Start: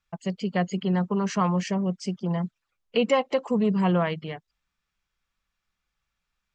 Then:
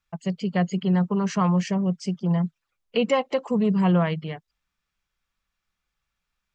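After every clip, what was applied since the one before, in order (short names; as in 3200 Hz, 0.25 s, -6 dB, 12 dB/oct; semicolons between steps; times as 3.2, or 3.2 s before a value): dynamic EQ 160 Hz, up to +6 dB, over -40 dBFS, Q 3.2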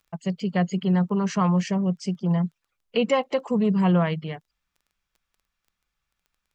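crackle 10/s -48 dBFS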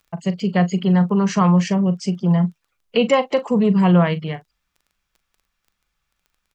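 doubler 40 ms -14 dB; gain +5.5 dB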